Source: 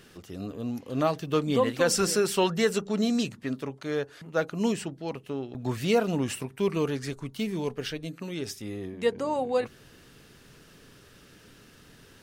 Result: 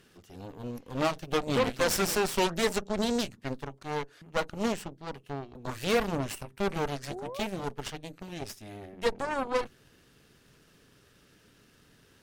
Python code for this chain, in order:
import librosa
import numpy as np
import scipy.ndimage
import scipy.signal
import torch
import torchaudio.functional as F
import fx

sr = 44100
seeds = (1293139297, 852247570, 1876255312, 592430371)

y = fx.spec_paint(x, sr, seeds[0], shape='rise', start_s=7.1, length_s=0.37, low_hz=320.0, high_hz=700.0, level_db=-34.0)
y = fx.cheby_harmonics(y, sr, harmonics=(7, 8), levels_db=(-27, -13), full_scale_db=-11.5)
y = y * 10.0 ** (-4.0 / 20.0)